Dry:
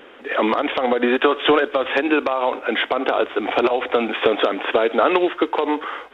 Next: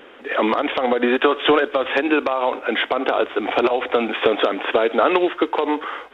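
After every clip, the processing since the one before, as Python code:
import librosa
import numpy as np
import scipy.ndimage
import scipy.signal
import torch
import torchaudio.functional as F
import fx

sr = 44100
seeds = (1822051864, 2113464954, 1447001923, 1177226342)

y = x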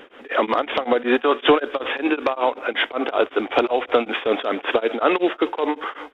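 y = x + 10.0 ** (-21.5 / 20.0) * np.pad(x, (int(311 * sr / 1000.0), 0))[:len(x)]
y = y * np.abs(np.cos(np.pi * 5.3 * np.arange(len(y)) / sr))
y = y * 10.0 ** (1.5 / 20.0)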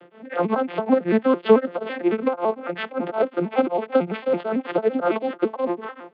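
y = fx.vocoder_arp(x, sr, chord='major triad', root=53, every_ms=111)
y = fx.lowpass(y, sr, hz=2900.0, slope=6)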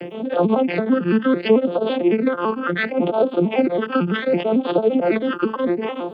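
y = fx.phaser_stages(x, sr, stages=12, low_hz=660.0, high_hz=2000.0, hz=0.69, feedback_pct=25)
y = fx.env_flatten(y, sr, amount_pct=50)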